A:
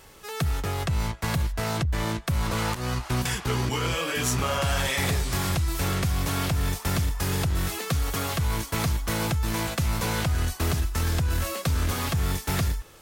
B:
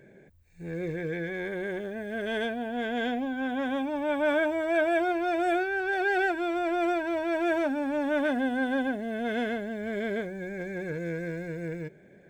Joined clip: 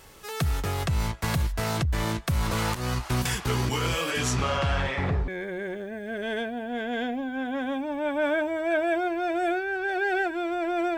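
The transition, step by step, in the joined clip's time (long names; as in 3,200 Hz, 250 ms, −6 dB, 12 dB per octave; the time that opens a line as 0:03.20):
A
0:04.10–0:05.28: low-pass filter 11,000 Hz → 1,000 Hz
0:05.28: continue with B from 0:01.32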